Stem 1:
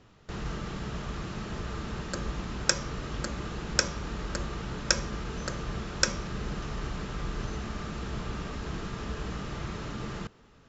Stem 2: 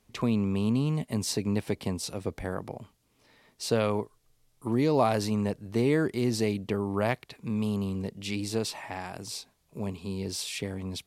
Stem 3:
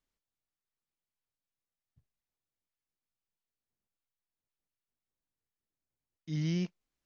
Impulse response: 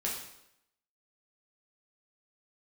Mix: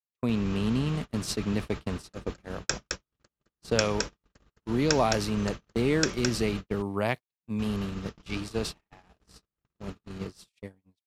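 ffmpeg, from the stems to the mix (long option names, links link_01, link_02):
-filter_complex "[0:a]volume=-4.5dB,asplit=3[link_01][link_02][link_03];[link_01]atrim=end=6.61,asetpts=PTS-STARTPTS,afade=type=out:start_time=6.606:duration=0.004:curve=hsin[link_04];[link_02]atrim=start=6.61:end=7.59,asetpts=PTS-STARTPTS,volume=0[link_05];[link_03]atrim=start=7.59,asetpts=PTS-STARTPTS,afade=type=in:duration=0.004:curve=hsin[link_06];[link_04][link_05][link_06]concat=n=3:v=0:a=1,asplit=2[link_07][link_08];[link_08]volume=-3.5dB[link_09];[1:a]highpass=51,volume=-1dB[link_10];[2:a]acompressor=threshold=-48dB:ratio=2,crystalizer=i=5:c=0,adelay=1750,volume=-5.5dB[link_11];[link_09]aecho=0:1:214:1[link_12];[link_07][link_10][link_11][link_12]amix=inputs=4:normalize=0,agate=range=-56dB:threshold=-31dB:ratio=16:detection=peak,adynamicequalizer=threshold=0.00355:dfrequency=3000:dqfactor=1.2:tfrequency=3000:tqfactor=1.2:attack=5:release=100:ratio=0.375:range=2:mode=boostabove:tftype=bell"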